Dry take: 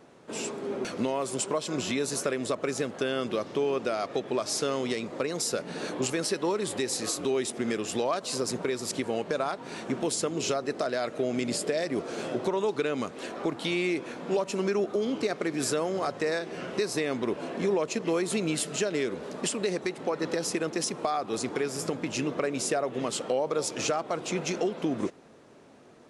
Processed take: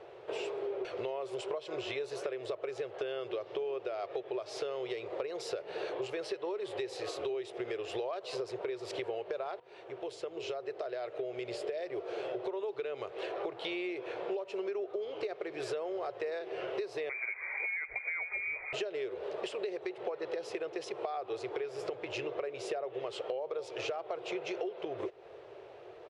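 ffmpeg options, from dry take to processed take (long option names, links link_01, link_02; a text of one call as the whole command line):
ffmpeg -i in.wav -filter_complex "[0:a]asettb=1/sr,asplit=3[link_01][link_02][link_03];[link_01]atrim=end=17.094[link_04];[link_02]atrim=start=17.09:end=18.73,asetpts=PTS-STARTPTS,afade=type=in:duration=0.004:curve=qsin,afade=type=out:start_time=1.636:duration=0.004:curve=qsin,lowpass=frequency=2200:width_type=q:width=0.5098,lowpass=frequency=2200:width_type=q:width=0.6013,lowpass=frequency=2200:width_type=q:width=0.9,lowpass=frequency=2200:width_type=q:width=2.563,afreqshift=-2600[link_05];[link_03]atrim=start=18.726[link_06];[link_04][link_05]acrossfade=duration=0.004:curve1=hsin:curve2=qsin[link_07];[link_07][link_06]acrossfade=duration=0.004:curve1=qsin:curve2=hsin,asplit=2[link_08][link_09];[link_08]atrim=end=9.6,asetpts=PTS-STARTPTS,afade=type=out:start_time=9.596:duration=0.004:curve=hsin:silence=0.11885[link_10];[link_09]atrim=start=9.6,asetpts=PTS-STARTPTS,afade=type=in:duration=3.68:silence=0.11885[link_11];[link_10][link_11]concat=n=2:v=0:a=1,firequalizer=gain_entry='entry(120,0);entry(170,-16);entry(250,-22);entry(370,8);entry(710,7);entry(1000,2);entry(1500,1);entry(2800,5);entry(6700,-13);entry(13000,-20)':delay=0.05:min_phase=1,acompressor=threshold=-34dB:ratio=6,volume=-1dB" out.wav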